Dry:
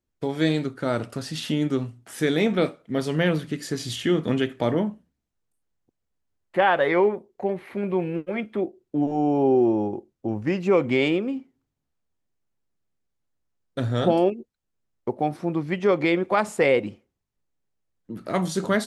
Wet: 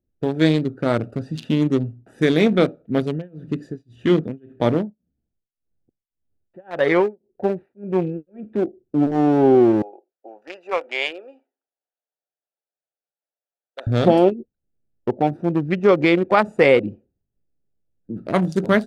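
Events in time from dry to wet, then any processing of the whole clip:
0:03.02–0:08.53: amplitude tremolo 1.8 Hz, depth 98%
0:09.82–0:13.87: high-pass filter 640 Hz 24 dB per octave
whole clip: adaptive Wiener filter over 41 samples; level +6 dB

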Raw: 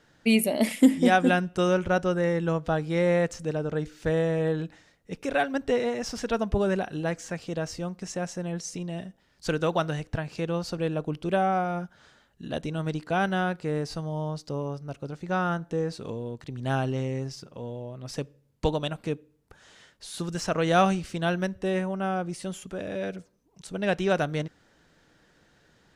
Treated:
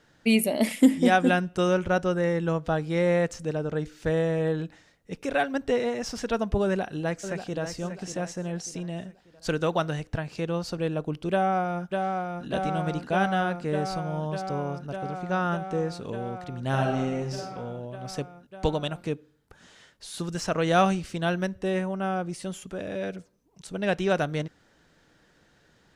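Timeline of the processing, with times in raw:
0:06.64–0:07.62: delay throw 590 ms, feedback 40%, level −9.5 dB
0:11.31–0:12.46: delay throw 600 ms, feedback 85%, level −4 dB
0:16.68–0:17.56: thrown reverb, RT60 0.8 s, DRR 1 dB

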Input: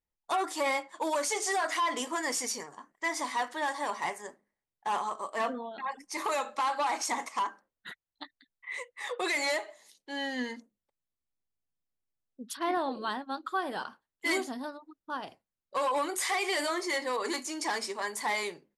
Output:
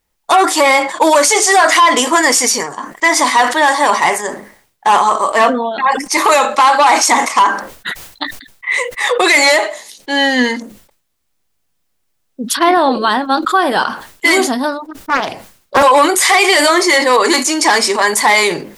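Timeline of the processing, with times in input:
0:14.85–0:15.83: highs frequency-modulated by the lows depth 0.45 ms
whole clip: low-shelf EQ 450 Hz −3 dB; boost into a limiter +23.5 dB; level that may fall only so fast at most 100 dB per second; level −1 dB

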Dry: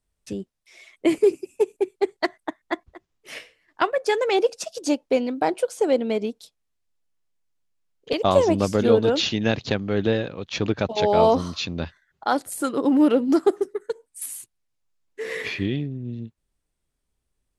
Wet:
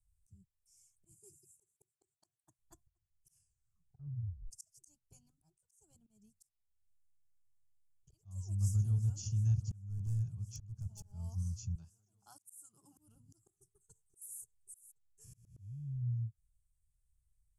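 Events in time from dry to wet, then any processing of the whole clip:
0:01.11–0:02.59: high-pass filter 150 Hz
0:03.35: tape stop 1.16 s
0:05.13–0:06.07: expander for the loud parts, over −28 dBFS
0:08.46–0:09.15: delay throw 360 ms, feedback 85%, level −16 dB
0:09.88–0:11.12: hard clipping −17.5 dBFS
0:11.75–0:12.98: high-pass filter 340 Hz
0:13.56–0:14.38: delay throw 530 ms, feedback 15%, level −8 dB
0:15.24–0:16.02: spectrum smeared in time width 425 ms
whole clip: inverse Chebyshev band-stop filter 240–4,100 Hz, stop band 40 dB; high-shelf EQ 9,900 Hz −11 dB; volume swells 485 ms; level +2 dB

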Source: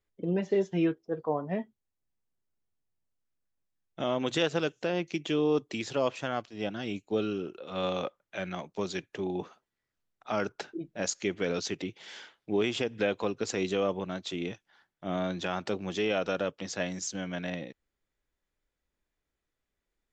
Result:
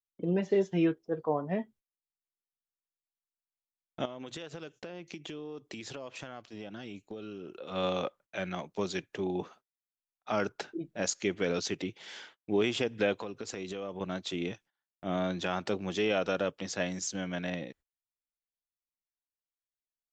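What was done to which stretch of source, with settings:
0:04.05–0:07.57: downward compressor 10 to 1, threshold −38 dBFS
0:13.21–0:14.01: downward compressor 4 to 1, threshold −36 dBFS
whole clip: noise gate −55 dBFS, range −27 dB

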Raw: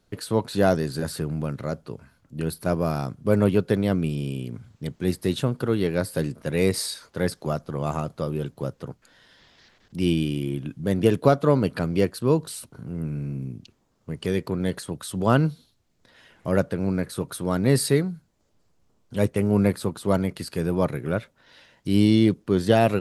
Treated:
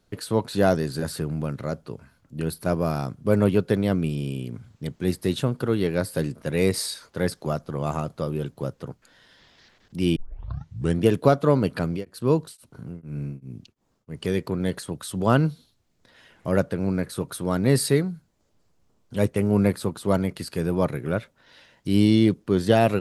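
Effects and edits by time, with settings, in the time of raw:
0:10.16: tape start 0.86 s
0:11.95–0:14.14: tremolo along a rectified sine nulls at 1.7 Hz → 3.5 Hz

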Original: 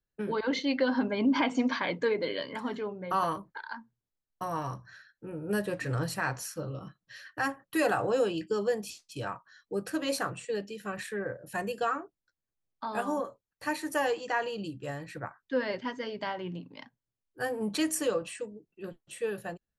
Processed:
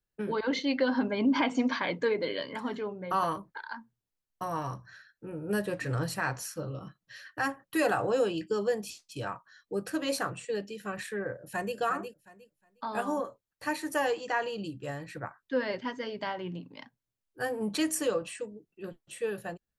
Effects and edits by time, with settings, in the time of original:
0:11.37–0:11.77: delay throw 360 ms, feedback 20%, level −7.5 dB

